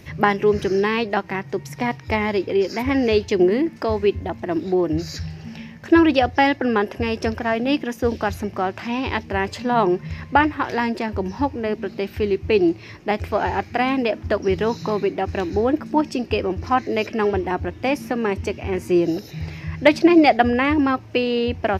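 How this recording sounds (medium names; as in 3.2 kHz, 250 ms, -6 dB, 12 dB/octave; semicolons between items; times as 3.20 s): noise floor -41 dBFS; spectral tilt -4.5 dB/octave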